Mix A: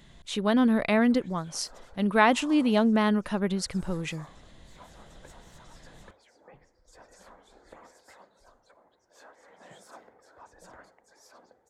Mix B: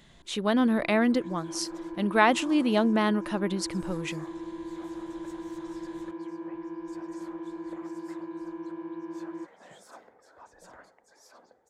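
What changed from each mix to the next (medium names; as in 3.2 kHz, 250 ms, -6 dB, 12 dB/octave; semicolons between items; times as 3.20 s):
first sound: unmuted; master: add bass shelf 140 Hz -6 dB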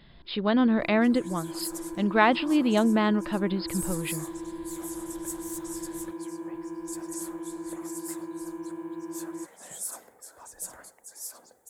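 speech: add brick-wall FIR low-pass 5.2 kHz; second sound: remove distance through air 230 m; master: add bass shelf 140 Hz +6 dB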